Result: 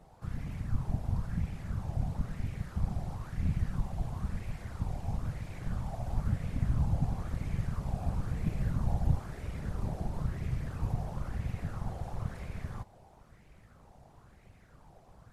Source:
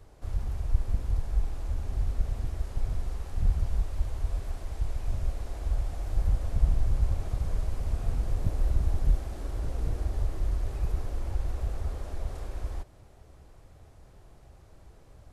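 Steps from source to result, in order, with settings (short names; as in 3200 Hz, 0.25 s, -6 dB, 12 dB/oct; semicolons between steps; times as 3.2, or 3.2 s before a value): whisperiser; LFO bell 1 Hz 720–2300 Hz +12 dB; gain -5 dB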